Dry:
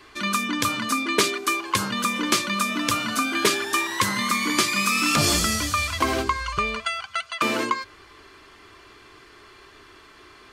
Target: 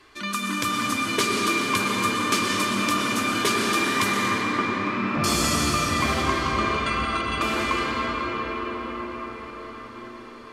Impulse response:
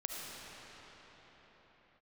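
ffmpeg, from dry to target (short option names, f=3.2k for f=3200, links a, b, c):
-filter_complex "[0:a]asettb=1/sr,asplit=3[a][b][c];[a]atrim=end=4.124[d];[b]atrim=start=4.12:end=5.24,asetpts=PTS-STARTPTS,afade=t=in:d=0.004:c=qsin,afade=t=out:st=1.116:d=0.004:c=qsin,lowpass=1.2k[e];[c]atrim=start=5.236[f];[d][e]acrossfade=d=0.004:c1=hsin:c2=qsin[g];[g][f]acrossfade=d=0.004:c1=qsin:c2=hsin[h];[1:a]atrim=start_sample=2205,asetrate=26460,aresample=44100[i];[h][i]afir=irnorm=-1:irlink=0,volume=-4dB"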